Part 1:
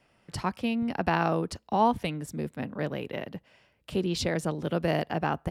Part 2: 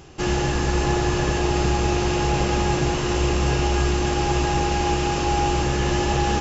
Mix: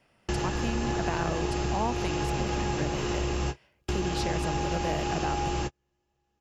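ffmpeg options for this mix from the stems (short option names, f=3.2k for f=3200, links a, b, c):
-filter_complex "[0:a]volume=-0.5dB,asplit=2[a][b];[1:a]volume=-4dB[c];[b]apad=whole_len=282637[d];[c][d]sidechaingate=range=-52dB:threshold=-53dB:ratio=16:detection=peak[e];[a][e]amix=inputs=2:normalize=0,acompressor=threshold=-27dB:ratio=2.5"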